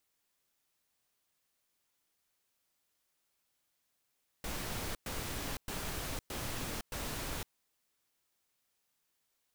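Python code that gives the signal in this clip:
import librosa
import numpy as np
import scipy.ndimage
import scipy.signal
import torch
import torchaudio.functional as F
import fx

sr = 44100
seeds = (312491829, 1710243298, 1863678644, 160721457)

y = fx.noise_burst(sr, seeds[0], colour='pink', on_s=0.51, off_s=0.11, bursts=5, level_db=-39.0)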